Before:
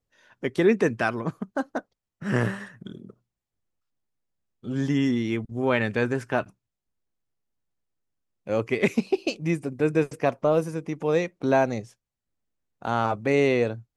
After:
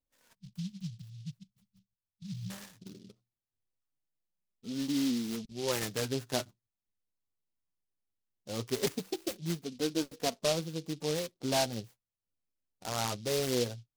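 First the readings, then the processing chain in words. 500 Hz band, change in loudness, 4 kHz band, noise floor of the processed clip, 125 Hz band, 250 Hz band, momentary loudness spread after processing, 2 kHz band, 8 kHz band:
-11.0 dB, -9.0 dB, +3.0 dB, under -85 dBFS, -9.5 dB, -9.5 dB, 16 LU, -14.0 dB, +8.0 dB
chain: flange 0.2 Hz, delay 3.3 ms, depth 8.5 ms, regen +12%; spectral delete 0.35–2.5, 210–8400 Hz; noise-modulated delay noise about 4100 Hz, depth 0.13 ms; gain -6 dB

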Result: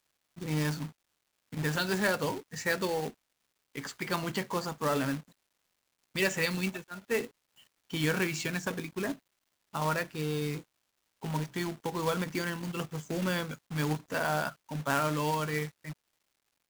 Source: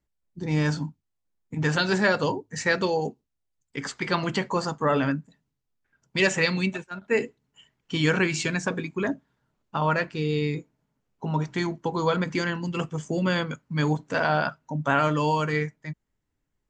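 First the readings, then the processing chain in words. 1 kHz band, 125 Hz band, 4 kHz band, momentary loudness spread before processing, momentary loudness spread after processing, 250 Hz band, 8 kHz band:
-6.5 dB, -7.0 dB, -5.5 dB, 12 LU, 12 LU, -7.0 dB, -2.0 dB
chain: companded quantiser 4-bit; crackle 500/s -55 dBFS; gain -7 dB

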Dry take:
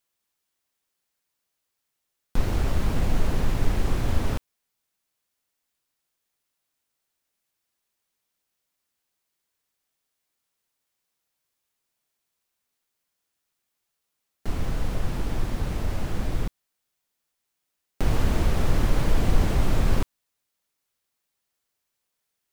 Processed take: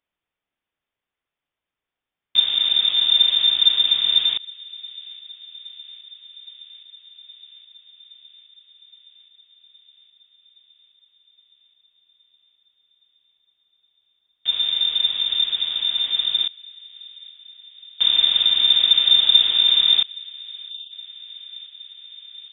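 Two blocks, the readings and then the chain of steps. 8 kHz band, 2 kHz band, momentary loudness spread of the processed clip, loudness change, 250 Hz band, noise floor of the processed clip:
under -35 dB, +3.0 dB, 21 LU, +12.5 dB, under -20 dB, under -85 dBFS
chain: inverted band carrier 3600 Hz; thin delay 0.818 s, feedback 74%, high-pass 1800 Hz, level -21.5 dB; spectral delete 20.69–20.92, 230–2600 Hz

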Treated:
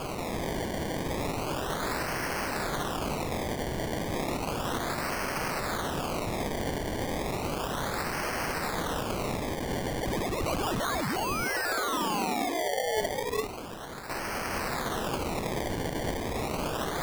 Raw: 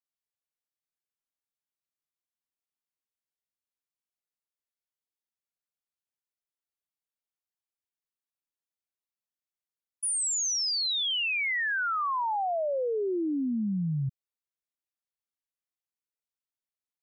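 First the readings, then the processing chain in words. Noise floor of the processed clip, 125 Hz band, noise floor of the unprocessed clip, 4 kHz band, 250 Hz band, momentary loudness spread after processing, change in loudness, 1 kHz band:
-35 dBFS, +5.0 dB, under -85 dBFS, -2.5 dB, +3.5 dB, 4 LU, -3.5 dB, +5.5 dB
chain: switching spikes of -39 dBFS; Chebyshev high-pass 450 Hz, order 8; on a send: thin delay 0.555 s, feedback 67%, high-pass 4800 Hz, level -14.5 dB; on the sum: negative-ratio compressor -37 dBFS, ratio -1; non-linear reverb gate 0.47 s rising, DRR 1.5 dB; decimation with a swept rate 23×, swing 100% 0.33 Hz; gain +8 dB

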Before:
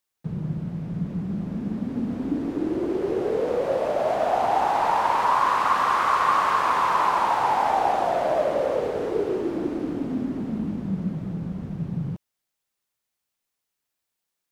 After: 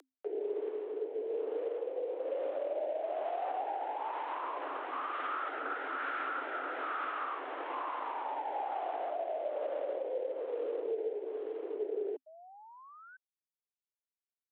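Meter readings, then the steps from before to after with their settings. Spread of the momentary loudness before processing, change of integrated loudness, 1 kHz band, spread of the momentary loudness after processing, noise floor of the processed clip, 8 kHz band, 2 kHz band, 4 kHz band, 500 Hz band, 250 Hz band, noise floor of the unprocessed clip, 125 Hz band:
10 LU, -13.0 dB, -15.0 dB, 4 LU, under -85 dBFS, under -35 dB, -10.5 dB, -15.5 dB, -8.5 dB, -22.0 dB, -83 dBFS, under -40 dB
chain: CVSD 16 kbps; rotary speaker horn 1.1 Hz; high shelf 2000 Hz -10.5 dB; limiter -22 dBFS, peak gain reduction 7 dB; upward compressor, threshold -33 dBFS; painted sound rise, 12.26–13.17, 360–1300 Hz -48 dBFS; frequency shift +260 Hz; dynamic EQ 1000 Hz, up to -4 dB, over -43 dBFS, Q 3.7; gain -5.5 dB

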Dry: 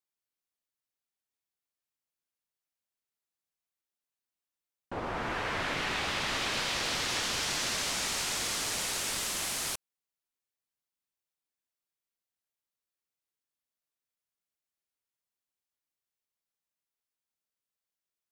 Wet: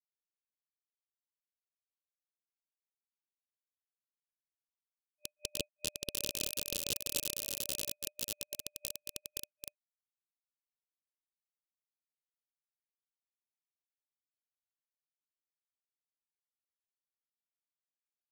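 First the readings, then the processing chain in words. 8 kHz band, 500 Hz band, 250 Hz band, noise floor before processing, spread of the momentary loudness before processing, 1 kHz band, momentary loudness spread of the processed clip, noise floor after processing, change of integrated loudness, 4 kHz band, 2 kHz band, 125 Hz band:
-6.5 dB, -9.5 dB, -10.0 dB, under -85 dBFS, 5 LU, -26.0 dB, 10 LU, under -85 dBFS, -7.0 dB, -9.0 dB, -17.0 dB, -10.0 dB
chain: notches 50/100/150/200/250/300/350/400/450 Hz; bit-crush 4-bit; FFT band-reject 600–2500 Hz; small resonant body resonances 650/1600 Hz, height 9 dB, ringing for 25 ms; in parallel at -6.5 dB: soft clip -27 dBFS, distortion -6 dB; on the sum: gain +3 dB

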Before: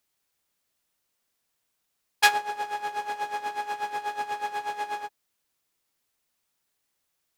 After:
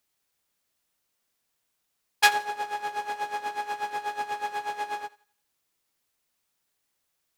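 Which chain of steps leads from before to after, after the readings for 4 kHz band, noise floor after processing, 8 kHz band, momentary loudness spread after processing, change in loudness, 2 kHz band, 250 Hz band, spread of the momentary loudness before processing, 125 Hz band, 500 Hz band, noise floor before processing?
0.0 dB, -78 dBFS, 0.0 dB, 11 LU, 0.0 dB, 0.0 dB, 0.0 dB, 11 LU, n/a, 0.0 dB, -78 dBFS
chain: thinning echo 85 ms, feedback 36%, level -20 dB

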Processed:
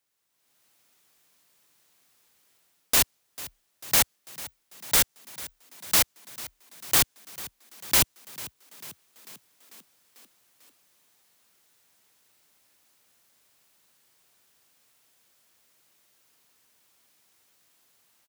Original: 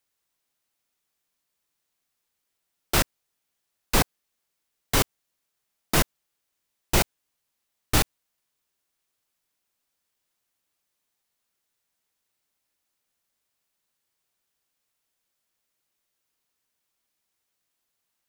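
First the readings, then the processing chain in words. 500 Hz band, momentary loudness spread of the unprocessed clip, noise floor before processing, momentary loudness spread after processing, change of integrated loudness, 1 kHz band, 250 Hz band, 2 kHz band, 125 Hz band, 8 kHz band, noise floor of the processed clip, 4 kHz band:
-7.0 dB, 6 LU, -80 dBFS, 22 LU, +1.0 dB, -4.0 dB, -9.0 dB, -0.5 dB, -10.5 dB, +5.0 dB, -73 dBFS, +2.5 dB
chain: HPF 80 Hz 12 dB/oct; dynamic EQ 6000 Hz, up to +4 dB, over -38 dBFS, Q 0.95; AGC gain up to 14 dB; wrapped overs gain 13.5 dB; frequency-shifting echo 0.445 s, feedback 62%, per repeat +34 Hz, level -18 dB

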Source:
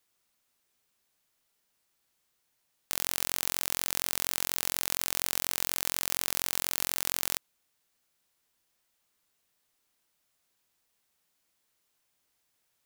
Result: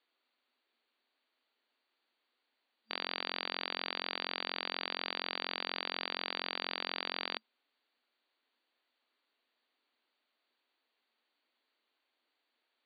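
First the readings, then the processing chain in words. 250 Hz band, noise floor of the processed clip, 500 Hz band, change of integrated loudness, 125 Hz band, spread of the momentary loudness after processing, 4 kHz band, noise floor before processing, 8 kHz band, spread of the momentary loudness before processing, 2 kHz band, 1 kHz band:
-1.5 dB, -84 dBFS, 0.0 dB, -8.0 dB, under -25 dB, 2 LU, -1.5 dB, -77 dBFS, under -40 dB, 2 LU, 0.0 dB, 0.0 dB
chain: FFT band-pass 220–4700 Hz

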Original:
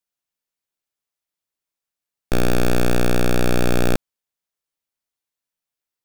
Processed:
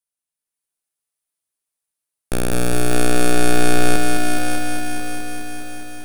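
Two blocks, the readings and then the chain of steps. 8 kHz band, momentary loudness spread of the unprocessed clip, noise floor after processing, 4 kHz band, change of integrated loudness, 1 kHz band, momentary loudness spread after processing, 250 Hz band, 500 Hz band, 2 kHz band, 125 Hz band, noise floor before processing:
+9.0 dB, 4 LU, under -85 dBFS, +4.0 dB, +0.5 dB, +6.0 dB, 13 LU, +2.5 dB, +1.0 dB, +5.5 dB, -1.0 dB, under -85 dBFS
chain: bell 9700 Hz +14 dB 0.42 oct; AGC gain up to 4 dB; on a send: thinning echo 0.595 s, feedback 40%, high-pass 380 Hz, level -4.5 dB; on the sum: lo-fi delay 0.208 s, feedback 80%, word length 7-bit, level -4 dB; gain -6 dB

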